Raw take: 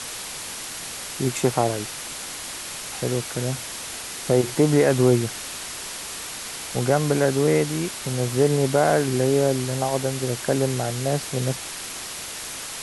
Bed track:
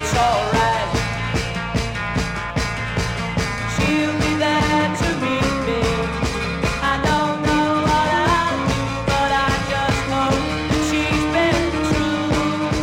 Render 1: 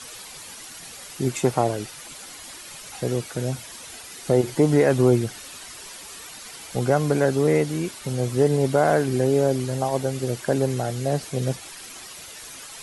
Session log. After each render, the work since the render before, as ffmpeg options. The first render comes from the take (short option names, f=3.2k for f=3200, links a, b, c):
-af "afftdn=nr=10:nf=-34"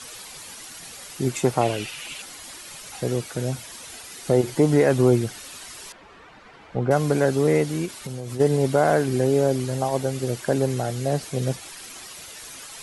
-filter_complex "[0:a]asettb=1/sr,asplit=3[a][b][c];[a]atrim=end=1.614[d];[b]atrim=start=1.61:end=2.22,asetpts=PTS-STARTPTS,afade=t=in:d=0.004:c=qsin,afade=t=out:st=0.606:d=0.004:c=qsin,equalizer=f=2.7k:t=o:w=0.68:g=13.5[e];[c]atrim=start=2.216[f];[d][e]acrossfade=d=0.004:c1=hsin:c2=qsin[g];[g][f]acrossfade=d=0.004:c1=qsin:c2=hsin,asettb=1/sr,asplit=3[h][i][j];[h]atrim=end=5.924[k];[i]atrim=start=5.92:end=6.91,asetpts=PTS-STARTPTS,afade=t=in:d=0.004:c=qsin,afade=t=out:st=0.986:d=0.004:c=qsin,lowpass=1.7k[l];[j]atrim=start=6.906[m];[k][l]acrossfade=d=0.004:c1=hsin:c2=qsin[n];[n][m]acrossfade=d=0.004:c1=qsin:c2=hsin,asplit=3[o][p][q];[o]afade=t=out:st=7.85:d=0.02[r];[p]acompressor=threshold=-27dB:ratio=10:attack=3.2:release=140:knee=1:detection=peak,afade=t=in:st=7.85:d=0.02,afade=t=out:st=8.39:d=0.02[s];[q]afade=t=in:st=8.39:d=0.02[t];[r][s][t]amix=inputs=3:normalize=0"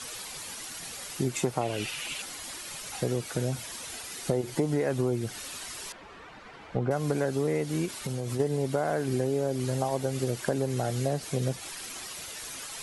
-af "acompressor=threshold=-24dB:ratio=6"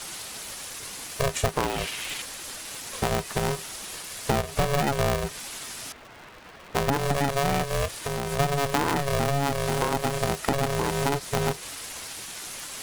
-filter_complex "[0:a]asplit=2[a][b];[b]aeval=exprs='sgn(val(0))*max(abs(val(0))-0.00501,0)':c=same,volume=-6.5dB[c];[a][c]amix=inputs=2:normalize=0,aeval=exprs='val(0)*sgn(sin(2*PI*280*n/s))':c=same"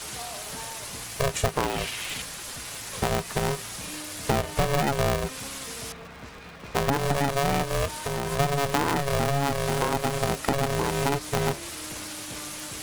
-filter_complex "[1:a]volume=-23.5dB[a];[0:a][a]amix=inputs=2:normalize=0"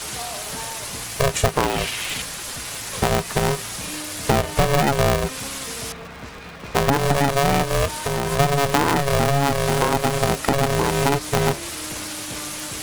-af "volume=6dB,alimiter=limit=-3dB:level=0:latency=1"